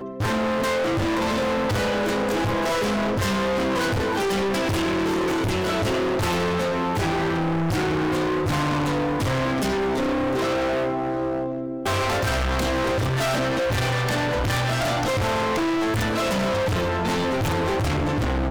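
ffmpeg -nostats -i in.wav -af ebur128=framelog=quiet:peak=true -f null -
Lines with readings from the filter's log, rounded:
Integrated loudness:
  I:         -23.2 LUFS
  Threshold: -33.2 LUFS
Loudness range:
  LRA:         1.1 LU
  Threshold: -43.2 LUFS
  LRA low:   -23.9 LUFS
  LRA high:  -22.9 LUFS
True peak:
  Peak:      -18.7 dBFS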